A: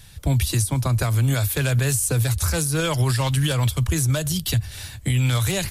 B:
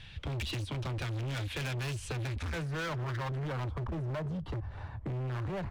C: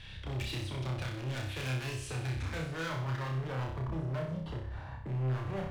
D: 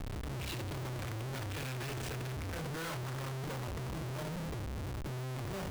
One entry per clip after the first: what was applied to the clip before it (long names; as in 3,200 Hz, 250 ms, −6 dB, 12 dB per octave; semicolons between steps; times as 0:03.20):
low-pass filter sweep 2,900 Hz → 990 Hz, 0:02.05–0:03.70; hard clipping −26.5 dBFS, distortion −7 dB; downward compressor, threshold −31 dBFS, peak gain reduction 3.5 dB; level −3.5 dB
brickwall limiter −37 dBFS, peak gain reduction 6.5 dB; on a send: flutter between parallel walls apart 5.3 metres, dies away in 0.58 s
comparator with hysteresis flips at −44.5 dBFS; level −3 dB